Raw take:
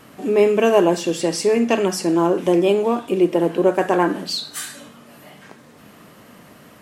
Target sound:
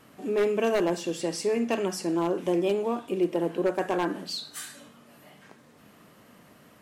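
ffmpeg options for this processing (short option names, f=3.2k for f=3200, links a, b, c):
-af "aeval=exprs='0.422*(abs(mod(val(0)/0.422+3,4)-2)-1)':c=same,volume=-9dB"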